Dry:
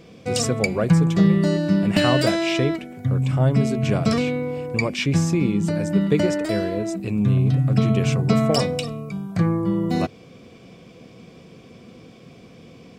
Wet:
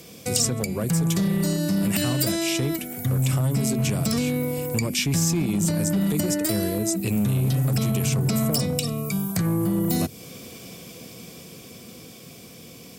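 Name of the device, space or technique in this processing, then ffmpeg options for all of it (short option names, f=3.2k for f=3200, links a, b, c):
FM broadcast chain: -filter_complex "[0:a]highpass=f=42:w=0.5412,highpass=f=42:w=1.3066,dynaudnorm=f=280:g=17:m=11.5dB,acrossover=split=320|6900[a][b][c];[a]acompressor=threshold=-16dB:ratio=4[d];[b]acompressor=threshold=-30dB:ratio=4[e];[c]acompressor=threshold=-50dB:ratio=4[f];[d][e][f]amix=inputs=3:normalize=0,aemphasis=mode=production:type=50fm,alimiter=limit=-14.5dB:level=0:latency=1:release=57,asoftclip=type=hard:threshold=-17.5dB,lowpass=f=15k:w=0.5412,lowpass=f=15k:w=1.3066,aemphasis=mode=production:type=50fm"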